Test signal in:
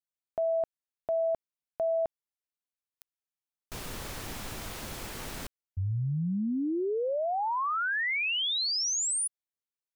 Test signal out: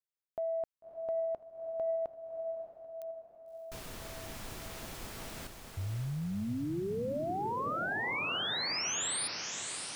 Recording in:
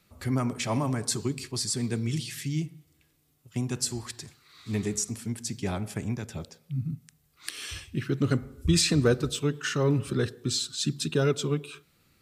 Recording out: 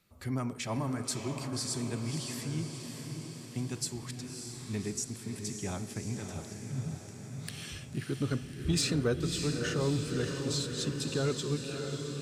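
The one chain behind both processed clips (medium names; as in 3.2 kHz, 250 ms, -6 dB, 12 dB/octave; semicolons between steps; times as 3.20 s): echo that smears into a reverb 603 ms, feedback 61%, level -6 dB; saturation -12 dBFS; trim -6 dB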